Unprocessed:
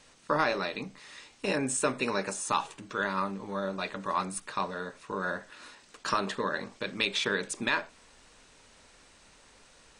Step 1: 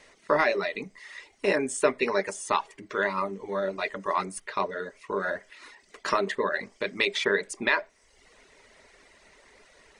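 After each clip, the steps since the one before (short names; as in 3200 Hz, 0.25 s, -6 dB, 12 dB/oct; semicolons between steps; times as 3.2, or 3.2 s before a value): reverb removal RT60 0.78 s; thirty-one-band EQ 125 Hz -7 dB, 400 Hz +10 dB, 630 Hz +8 dB, 1000 Hz +3 dB, 2000 Hz +12 dB, 8000 Hz -3 dB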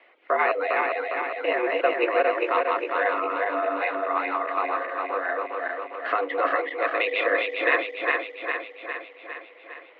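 regenerating reverse delay 0.203 s, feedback 77%, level -1.5 dB; mistuned SSB +93 Hz 190–3000 Hz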